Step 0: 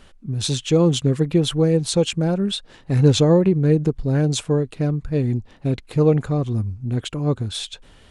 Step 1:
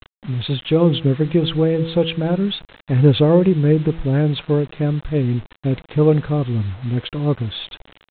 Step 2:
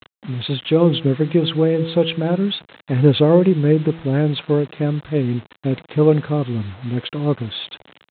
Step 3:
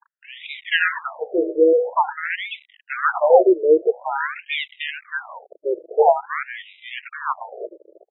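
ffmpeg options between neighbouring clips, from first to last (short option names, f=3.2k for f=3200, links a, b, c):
-af "bandreject=f=163.9:t=h:w=4,bandreject=f=327.8:t=h:w=4,bandreject=f=491.7:t=h:w=4,aresample=8000,acrusher=bits=6:mix=0:aa=0.000001,aresample=44100,volume=2dB"
-af "highpass=140,volume=1dB"
-af "acrusher=samples=31:mix=1:aa=0.000001:lfo=1:lforange=18.6:lforate=1.5,afftfilt=real='re*between(b*sr/1024,430*pow(2800/430,0.5+0.5*sin(2*PI*0.48*pts/sr))/1.41,430*pow(2800/430,0.5+0.5*sin(2*PI*0.48*pts/sr))*1.41)':imag='im*between(b*sr/1024,430*pow(2800/430,0.5+0.5*sin(2*PI*0.48*pts/sr))/1.41,430*pow(2800/430,0.5+0.5*sin(2*PI*0.48*pts/sr))*1.41)':win_size=1024:overlap=0.75,volume=6dB"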